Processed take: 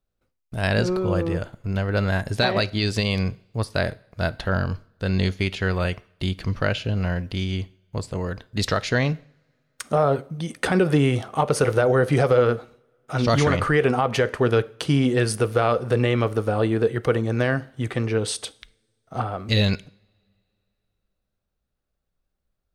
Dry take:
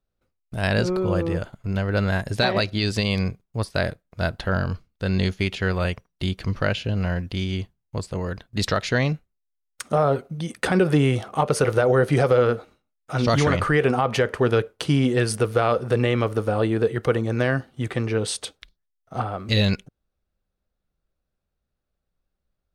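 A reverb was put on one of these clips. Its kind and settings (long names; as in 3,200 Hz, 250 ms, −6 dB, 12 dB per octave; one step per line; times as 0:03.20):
coupled-rooms reverb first 0.56 s, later 2.9 s, from −27 dB, DRR 18 dB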